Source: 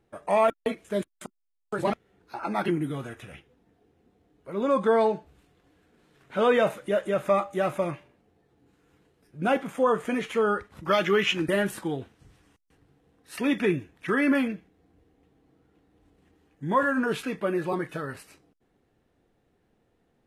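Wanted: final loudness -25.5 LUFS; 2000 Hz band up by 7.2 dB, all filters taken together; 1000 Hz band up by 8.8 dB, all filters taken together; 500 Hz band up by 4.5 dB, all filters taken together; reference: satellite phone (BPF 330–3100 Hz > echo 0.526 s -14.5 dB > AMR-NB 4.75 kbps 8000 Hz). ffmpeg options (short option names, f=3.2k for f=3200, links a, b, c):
-af "highpass=330,lowpass=3.1k,equalizer=f=500:t=o:g=3.5,equalizer=f=1k:t=o:g=8.5,equalizer=f=2k:t=o:g=6.5,aecho=1:1:526:0.188,volume=-2.5dB" -ar 8000 -c:a libopencore_amrnb -b:a 4750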